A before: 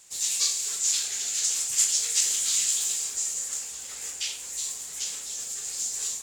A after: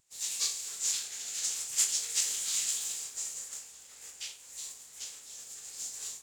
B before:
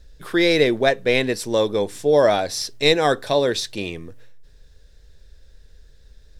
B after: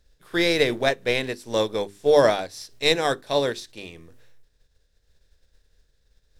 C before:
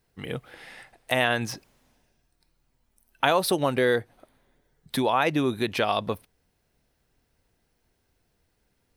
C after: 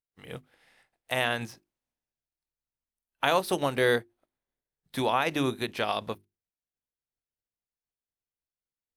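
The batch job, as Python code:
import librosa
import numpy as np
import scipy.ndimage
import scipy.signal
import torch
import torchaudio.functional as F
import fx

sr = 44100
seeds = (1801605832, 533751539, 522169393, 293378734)

y = fx.spec_flatten(x, sr, power=0.57)
y = fx.hum_notches(y, sr, base_hz=50, count=8)
y = fx.spectral_expand(y, sr, expansion=1.5)
y = F.gain(torch.from_numpy(y), -5.0).numpy()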